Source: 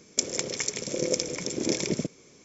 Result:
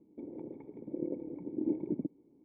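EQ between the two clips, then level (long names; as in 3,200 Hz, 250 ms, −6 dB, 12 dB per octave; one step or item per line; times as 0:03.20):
formant resonators in series u
+1.0 dB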